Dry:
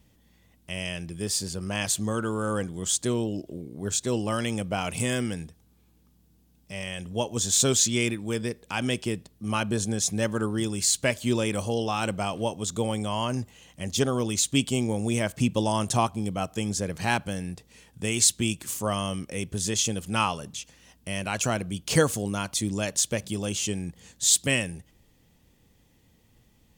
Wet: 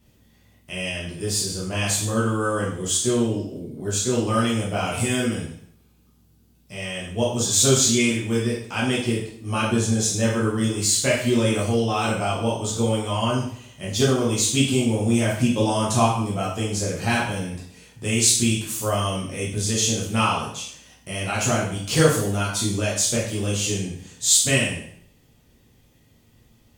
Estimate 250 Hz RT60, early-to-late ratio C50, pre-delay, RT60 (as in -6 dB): 0.65 s, 3.5 dB, 5 ms, 0.65 s